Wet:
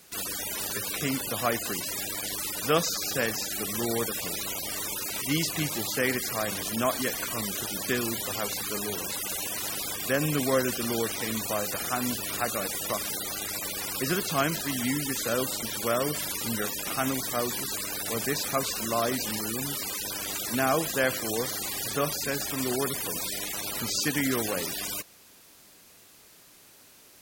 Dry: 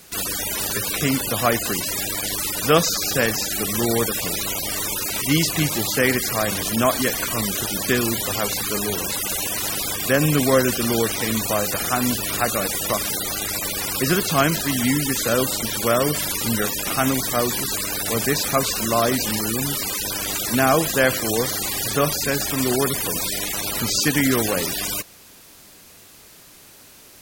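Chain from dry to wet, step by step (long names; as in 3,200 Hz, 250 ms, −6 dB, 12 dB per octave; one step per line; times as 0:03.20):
low-shelf EQ 110 Hz −6.5 dB
level −7.5 dB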